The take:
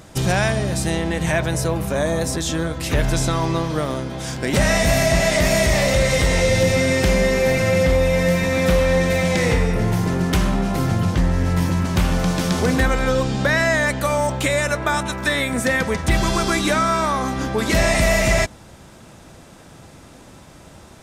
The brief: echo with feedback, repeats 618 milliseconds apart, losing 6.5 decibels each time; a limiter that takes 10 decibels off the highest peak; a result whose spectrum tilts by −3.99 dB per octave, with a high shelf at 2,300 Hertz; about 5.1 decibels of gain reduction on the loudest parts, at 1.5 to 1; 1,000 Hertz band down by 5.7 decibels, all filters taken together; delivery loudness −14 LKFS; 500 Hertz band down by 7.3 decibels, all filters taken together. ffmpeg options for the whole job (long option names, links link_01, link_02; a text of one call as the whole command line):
ffmpeg -i in.wav -af "equalizer=frequency=500:width_type=o:gain=-7,equalizer=frequency=1000:width_type=o:gain=-6.5,highshelf=frequency=2300:gain=4,acompressor=threshold=-28dB:ratio=1.5,alimiter=limit=-19dB:level=0:latency=1,aecho=1:1:618|1236|1854|2472|3090|3708:0.473|0.222|0.105|0.0491|0.0231|0.0109,volume=13dB" out.wav